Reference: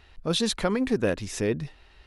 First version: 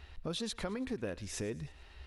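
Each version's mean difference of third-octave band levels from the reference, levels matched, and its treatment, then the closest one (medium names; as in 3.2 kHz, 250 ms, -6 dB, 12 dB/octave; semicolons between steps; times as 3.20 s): 4.5 dB: peaking EQ 70 Hz +15 dB 0.24 oct; compression 3:1, threshold -38 dBFS, peak gain reduction 14 dB; on a send: thinning echo 110 ms, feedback 52%, high-pass 770 Hz, level -19 dB; on the sum: trim -1 dB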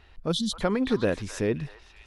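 3.0 dB: time-frequency box 0.32–0.61 s, 250–2900 Hz -27 dB; treble shelf 3.9 kHz -6 dB; on a send: repeats whose band climbs or falls 262 ms, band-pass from 1.2 kHz, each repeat 1.4 oct, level -8 dB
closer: second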